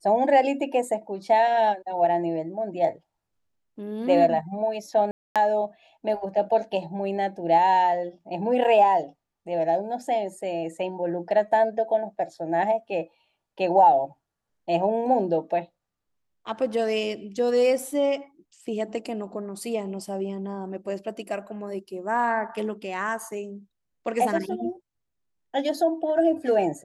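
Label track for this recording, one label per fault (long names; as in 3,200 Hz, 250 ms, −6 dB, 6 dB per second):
5.110000	5.360000	drop-out 247 ms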